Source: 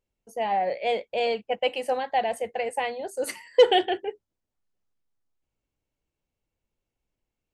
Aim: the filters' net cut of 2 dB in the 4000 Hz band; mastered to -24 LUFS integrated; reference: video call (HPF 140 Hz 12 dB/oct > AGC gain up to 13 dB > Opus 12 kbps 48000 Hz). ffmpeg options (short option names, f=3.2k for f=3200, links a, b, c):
-af "highpass=140,equalizer=f=4k:t=o:g=-3,dynaudnorm=m=13dB,volume=2.5dB" -ar 48000 -c:a libopus -b:a 12k